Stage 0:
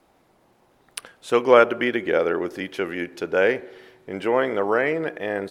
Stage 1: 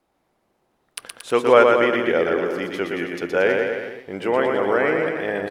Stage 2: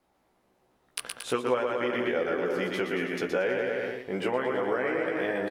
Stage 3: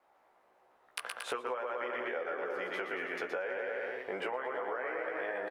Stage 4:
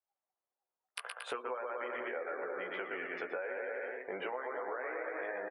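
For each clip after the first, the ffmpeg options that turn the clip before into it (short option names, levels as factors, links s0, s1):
-filter_complex "[0:a]agate=range=0.316:threshold=0.00224:ratio=16:detection=peak,asplit=2[s0][s1];[s1]aecho=0:1:120|228|325.2|412.7|491.4:0.631|0.398|0.251|0.158|0.1[s2];[s0][s2]amix=inputs=2:normalize=0"
-filter_complex "[0:a]acompressor=threshold=0.0631:ratio=6,asplit=2[s0][s1];[s1]adelay=16,volume=0.668[s2];[s0][s2]amix=inputs=2:normalize=0,volume=0.794"
-filter_complex "[0:a]acrossover=split=490 2200:gain=0.0891 1 0.224[s0][s1][s2];[s0][s1][s2]amix=inputs=3:normalize=0,acompressor=threshold=0.01:ratio=6,volume=2"
-af "afftdn=nr=28:nf=-50,volume=0.75"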